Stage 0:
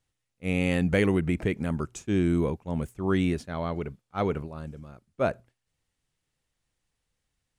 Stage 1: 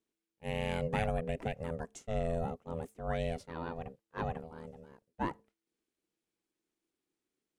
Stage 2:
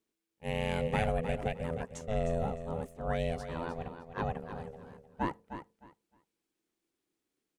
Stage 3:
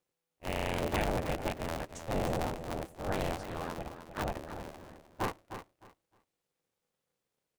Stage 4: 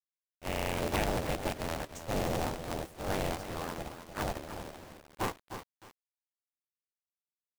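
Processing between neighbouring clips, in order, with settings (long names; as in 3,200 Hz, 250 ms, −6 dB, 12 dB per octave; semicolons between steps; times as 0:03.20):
ring modulation 330 Hz; level −6.5 dB
repeating echo 307 ms, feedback 21%, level −10 dB; level +2 dB
sub-harmonics by changed cycles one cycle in 2, inverted; level −1 dB
log-companded quantiser 4 bits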